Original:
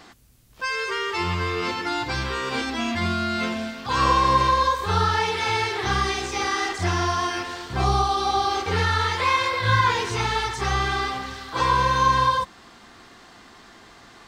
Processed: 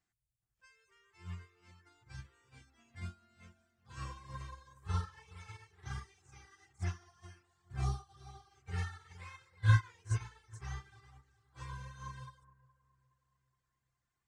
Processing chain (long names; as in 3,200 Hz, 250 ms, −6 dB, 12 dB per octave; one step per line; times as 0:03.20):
octave-band graphic EQ 125/250/500/1,000/4,000/8,000 Hz +6/−11/−10/−10/−8/+10 dB
reverb reduction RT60 1 s
high-shelf EQ 2,600 Hz −7.5 dB
bucket-brigade delay 418 ms, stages 4,096, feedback 49%, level −8 dB
expander for the loud parts 2.5 to 1, over −37 dBFS
level −2.5 dB